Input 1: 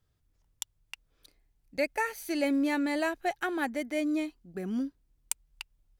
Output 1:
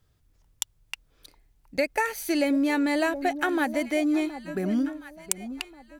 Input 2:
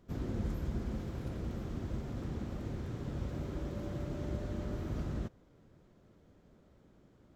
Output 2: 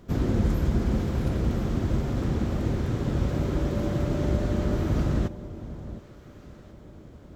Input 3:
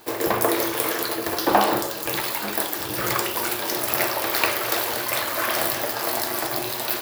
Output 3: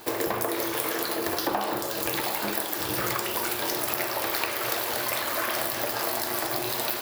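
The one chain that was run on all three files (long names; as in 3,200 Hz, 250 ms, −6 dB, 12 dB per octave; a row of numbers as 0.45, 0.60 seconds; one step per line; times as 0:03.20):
delay that swaps between a low-pass and a high-pass 718 ms, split 1,000 Hz, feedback 51%, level −13 dB
downward compressor 6 to 1, threshold −28 dBFS
loudness normalisation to −27 LKFS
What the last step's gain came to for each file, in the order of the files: +7.5, +12.5, +3.0 decibels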